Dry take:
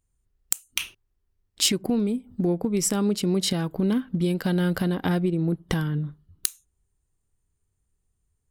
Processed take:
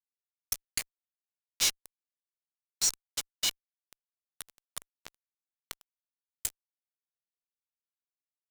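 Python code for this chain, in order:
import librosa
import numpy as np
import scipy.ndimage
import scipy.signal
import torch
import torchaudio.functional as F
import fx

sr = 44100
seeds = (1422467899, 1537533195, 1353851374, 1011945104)

y = fx.formant_shift(x, sr, semitones=-5)
y = scipy.signal.lfilter([1.0, -0.97], [1.0], y)
y = fx.fuzz(y, sr, gain_db=39.0, gate_db=-33.0)
y = F.gain(torch.from_numpy(y), -8.5).numpy()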